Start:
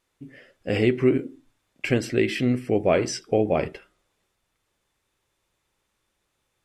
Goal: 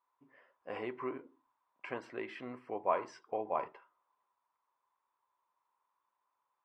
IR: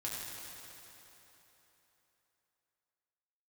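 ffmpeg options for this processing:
-af "bandpass=frequency=1000:width_type=q:width=10:csg=0,volume=7.5dB"

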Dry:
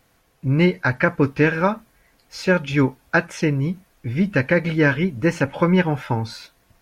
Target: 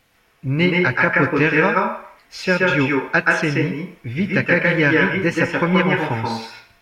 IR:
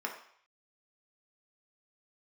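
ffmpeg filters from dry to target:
-filter_complex "[0:a]equalizer=frequency=2700:width_type=o:width=1.5:gain=7,asplit=2[link_01][link_02];[1:a]atrim=start_sample=2205,adelay=127[link_03];[link_02][link_03]afir=irnorm=-1:irlink=0,volume=-1.5dB[link_04];[link_01][link_04]amix=inputs=2:normalize=0,volume=-2dB"

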